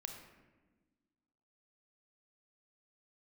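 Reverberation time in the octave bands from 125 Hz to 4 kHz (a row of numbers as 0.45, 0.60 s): 1.6, 2.0, 1.4, 1.1, 1.1, 0.70 s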